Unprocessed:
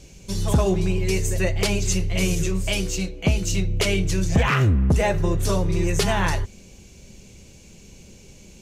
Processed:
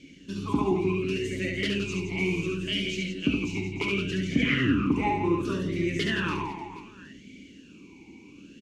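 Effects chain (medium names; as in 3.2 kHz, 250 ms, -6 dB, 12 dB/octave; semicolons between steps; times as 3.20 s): in parallel at -2.5 dB: peak limiter -20.5 dBFS, peak gain reduction 9.5 dB; on the sum: reverse bouncing-ball echo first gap 70 ms, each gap 1.4×, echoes 5; talking filter i-u 0.68 Hz; trim +6.5 dB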